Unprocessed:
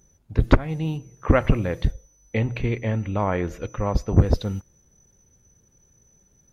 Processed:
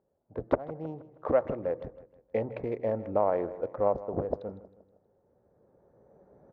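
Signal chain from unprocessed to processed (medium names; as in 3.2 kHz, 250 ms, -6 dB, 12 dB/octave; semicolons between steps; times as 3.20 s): local Wiener filter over 15 samples; recorder AGC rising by 10 dB/s; band-pass filter 600 Hz, Q 2.1; feedback delay 158 ms, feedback 45%, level -17 dB; trim -1.5 dB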